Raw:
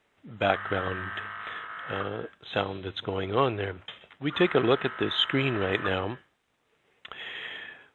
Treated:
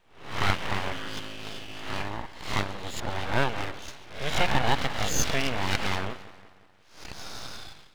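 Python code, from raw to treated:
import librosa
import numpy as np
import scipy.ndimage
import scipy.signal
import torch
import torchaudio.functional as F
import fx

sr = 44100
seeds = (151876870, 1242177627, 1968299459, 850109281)

y = fx.spec_swells(x, sr, rise_s=0.52)
y = fx.echo_split(y, sr, split_hz=1800.0, low_ms=179, high_ms=136, feedback_pct=52, wet_db=-15.5)
y = np.abs(y)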